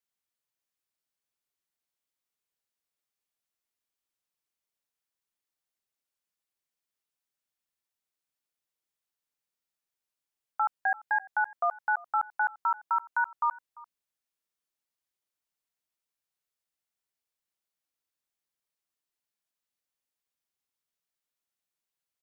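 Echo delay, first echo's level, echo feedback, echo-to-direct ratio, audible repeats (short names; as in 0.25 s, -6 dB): 0.344 s, -21.5 dB, no steady repeat, -21.5 dB, 1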